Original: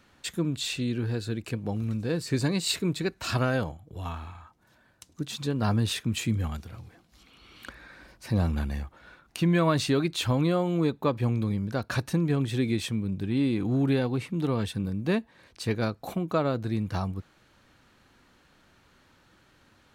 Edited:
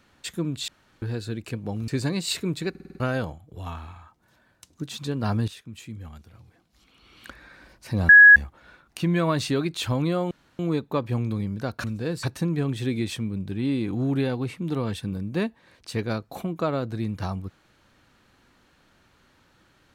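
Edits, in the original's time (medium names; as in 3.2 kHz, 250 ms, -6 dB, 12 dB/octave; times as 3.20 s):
0.68–1.02 s: room tone
1.88–2.27 s: move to 11.95 s
3.09 s: stutter in place 0.05 s, 6 plays
5.87–7.67 s: fade in quadratic, from -13 dB
8.48–8.75 s: bleep 1.67 kHz -6.5 dBFS
10.70 s: insert room tone 0.28 s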